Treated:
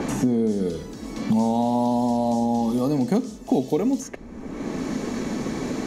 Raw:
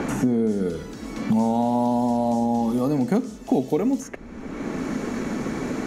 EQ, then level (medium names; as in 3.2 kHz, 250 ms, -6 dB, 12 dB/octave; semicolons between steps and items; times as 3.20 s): peaking EQ 2.4 kHz -5 dB 1.6 oct; band-stop 1.4 kHz, Q 8.8; dynamic bell 3.9 kHz, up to +7 dB, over -50 dBFS, Q 0.81; 0.0 dB